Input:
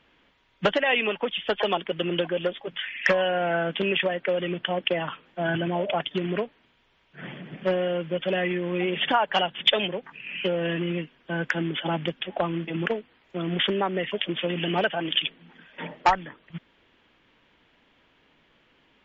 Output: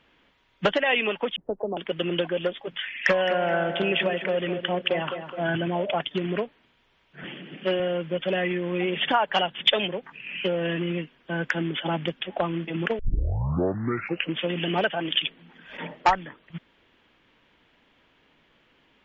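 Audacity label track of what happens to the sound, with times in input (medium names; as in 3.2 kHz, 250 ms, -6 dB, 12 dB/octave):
1.360000	1.770000	Bessel low-pass 500 Hz, order 6
2.930000	5.450000	tape echo 212 ms, feedback 54%, level -7.5 dB, low-pass 2 kHz
7.240000	7.800000	cabinet simulation 190–5900 Hz, peaks and dips at 320 Hz +5 dB, 660 Hz -5 dB, 1 kHz -4 dB, 2.9 kHz +8 dB
12.990000	12.990000	tape start 1.39 s
15.260000	15.950000	swell ahead of each attack at most 96 dB/s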